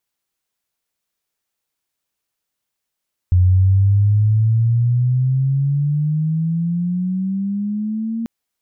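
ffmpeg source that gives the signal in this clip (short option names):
-f lavfi -i "aevalsrc='pow(10,(-9-11*t/4.94)/20)*sin(2*PI*89*4.94/(16.5*log(2)/12)*(exp(16.5*log(2)/12*t/4.94)-1))':d=4.94:s=44100"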